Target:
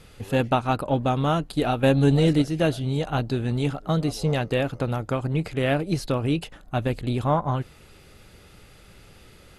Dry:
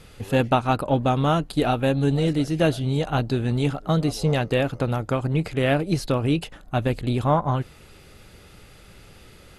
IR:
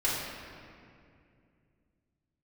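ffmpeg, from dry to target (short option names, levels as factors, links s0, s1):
-filter_complex "[0:a]asettb=1/sr,asplit=3[s0][s1][s2];[s0]atrim=end=1.834[s3];[s1]atrim=start=1.83:end=2.42,asetpts=PTS-STARTPTS,afade=t=in:d=0.004:c=qsin,afade=t=out:st=0.586:d=0.004:c=qsin,acontrast=24[s4];[s2]atrim=start=2.416[s5];[s3][s4]acrossfade=d=0.004:c1=hsin:c2=qsin[s6];[s6][s5]acrossfade=d=0.004:c1=qsin:c2=hsin,volume=0.794"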